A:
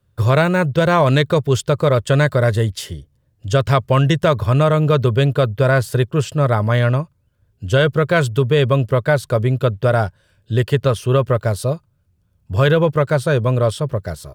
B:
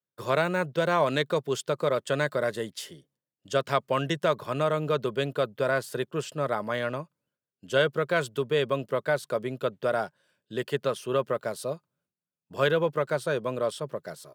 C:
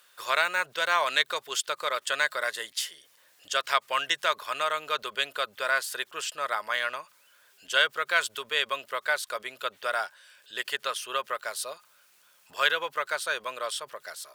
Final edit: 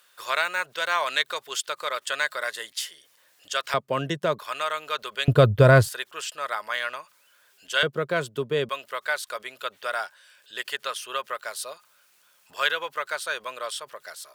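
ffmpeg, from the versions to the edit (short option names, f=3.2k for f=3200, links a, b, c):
-filter_complex "[1:a]asplit=2[a][b];[2:a]asplit=4[c][d][e][f];[c]atrim=end=3.742[g];[a]atrim=start=3.738:end=4.392[h];[d]atrim=start=4.388:end=5.282[i];[0:a]atrim=start=5.278:end=5.892[j];[e]atrim=start=5.888:end=7.832[k];[b]atrim=start=7.828:end=8.692[l];[f]atrim=start=8.688[m];[g][h]acrossfade=d=0.004:c1=hsin:c2=hsin[n];[n][i]acrossfade=d=0.004:c1=hsin:c2=hsin[o];[o][j]acrossfade=d=0.004:c1=hsin:c2=hsin[p];[p][k]acrossfade=d=0.004:c1=hsin:c2=hsin[q];[q][l]acrossfade=d=0.004:c1=hsin:c2=hsin[r];[r][m]acrossfade=d=0.004:c1=hsin:c2=hsin"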